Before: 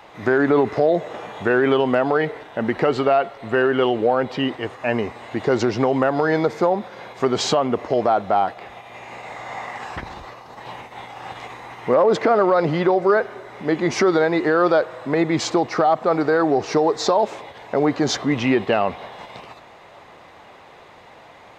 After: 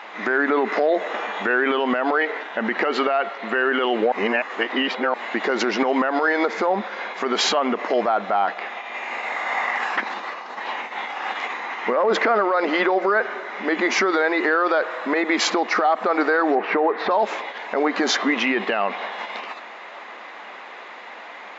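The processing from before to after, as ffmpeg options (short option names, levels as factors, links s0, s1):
-filter_complex "[0:a]asettb=1/sr,asplit=3[s0][s1][s2];[s0]atrim=end=16.554[s3];[s1]atrim=start=16.55:end=17.11,asetpts=PTS-STARTPTS,afade=t=in:d=0.004:c=qsin,afade=t=out:st=0.556:d=0.004:c=qsin,lowpass=f=2700:w=0.5412,lowpass=f=2700:w=1.3066[s4];[s2]atrim=start=17.106[s5];[s3][s4]acrossfade=d=0.004:c1=hsin:c2=qsin[s6];[s6][s5]acrossfade=d=0.004:c1=qsin:c2=hsin,asplit=3[s7][s8][s9];[s7]atrim=end=4.122[s10];[s8]atrim=start=4.118:end=5.142,asetpts=PTS-STARTPTS,areverse[s11];[s9]atrim=start=5.138[s12];[s10][s11]acrossfade=d=0.004:c1=hsin:c2=hsin[s13];[s13][s12]acrossfade=d=0.004:c1=hsin:c2=hsin,afftfilt=real='re*between(b*sr/4096,190,7500)':imag='im*between(b*sr/4096,190,7500)':win_size=4096:overlap=0.75,equalizer=f=1800:t=o:w=2.2:g=11.5,alimiter=limit=0.299:level=0:latency=1:release=69"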